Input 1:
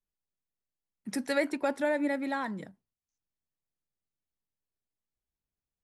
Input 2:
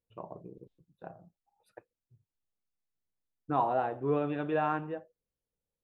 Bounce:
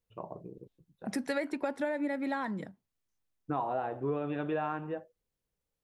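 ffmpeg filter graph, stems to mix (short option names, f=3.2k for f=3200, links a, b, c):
-filter_complex "[0:a]highshelf=f=4.4k:g=-7.5,volume=2dB,asplit=2[a][b];[1:a]volume=1.5dB[c];[b]apad=whole_len=257543[d];[c][d]sidechaincompress=threshold=-41dB:ratio=8:attack=16:release=390[e];[a][e]amix=inputs=2:normalize=0,acompressor=threshold=-29dB:ratio=6"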